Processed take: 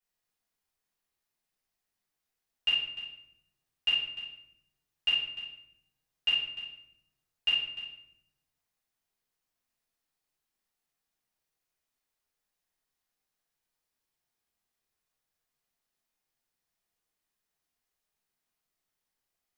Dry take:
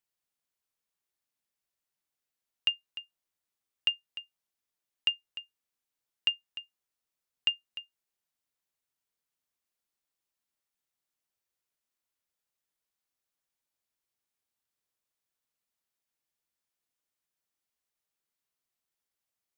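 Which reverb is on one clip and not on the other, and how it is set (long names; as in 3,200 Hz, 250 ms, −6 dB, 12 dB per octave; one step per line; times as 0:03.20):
rectangular room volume 210 cubic metres, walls mixed, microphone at 4.7 metres
level −9.5 dB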